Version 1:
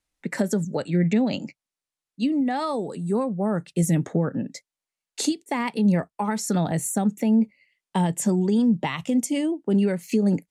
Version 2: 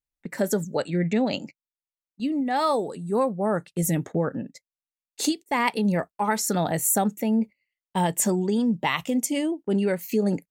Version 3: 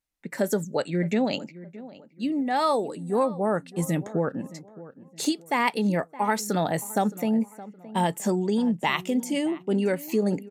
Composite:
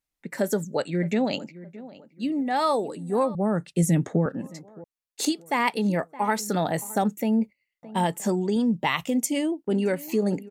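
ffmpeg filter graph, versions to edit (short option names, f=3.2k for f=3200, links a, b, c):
-filter_complex "[1:a]asplit=3[a][b][c];[2:a]asplit=5[d][e][f][g][h];[d]atrim=end=3.352[i];[0:a]atrim=start=3.348:end=4.262[j];[e]atrim=start=4.258:end=4.842[k];[a]atrim=start=4.838:end=5.252[l];[f]atrim=start=5.248:end=7.032[m];[b]atrim=start=7.028:end=7.832[n];[g]atrim=start=7.828:end=8.562[o];[c]atrim=start=8.558:end=9.702[p];[h]atrim=start=9.698[q];[i][j]acrossfade=d=0.004:c1=hsin:c2=hsin[r];[r][k]acrossfade=d=0.004:c1=hsin:c2=hsin[s];[s][l]acrossfade=d=0.004:c1=hsin:c2=hsin[t];[t][m]acrossfade=d=0.004:c1=hsin:c2=hsin[u];[u][n]acrossfade=d=0.004:c1=hsin:c2=hsin[v];[v][o]acrossfade=d=0.004:c1=hsin:c2=hsin[w];[w][p]acrossfade=d=0.004:c1=hsin:c2=hsin[x];[x][q]acrossfade=d=0.004:c1=hsin:c2=hsin"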